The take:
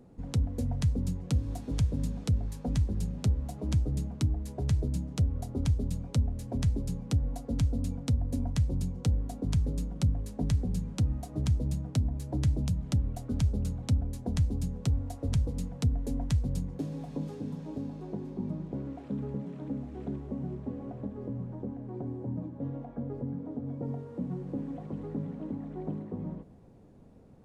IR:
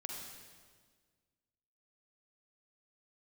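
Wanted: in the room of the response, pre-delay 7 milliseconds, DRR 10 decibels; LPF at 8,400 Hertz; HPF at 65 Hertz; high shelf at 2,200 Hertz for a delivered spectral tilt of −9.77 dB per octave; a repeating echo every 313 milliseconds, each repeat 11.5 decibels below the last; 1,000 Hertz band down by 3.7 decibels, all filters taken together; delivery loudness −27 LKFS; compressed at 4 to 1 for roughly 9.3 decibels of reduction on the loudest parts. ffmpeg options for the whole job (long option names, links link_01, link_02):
-filter_complex "[0:a]highpass=65,lowpass=8400,equalizer=frequency=1000:width_type=o:gain=-5,highshelf=frequency=2200:gain=-4,acompressor=threshold=-34dB:ratio=4,aecho=1:1:313|626|939:0.266|0.0718|0.0194,asplit=2[link_01][link_02];[1:a]atrim=start_sample=2205,adelay=7[link_03];[link_02][link_03]afir=irnorm=-1:irlink=0,volume=-9dB[link_04];[link_01][link_04]amix=inputs=2:normalize=0,volume=11.5dB"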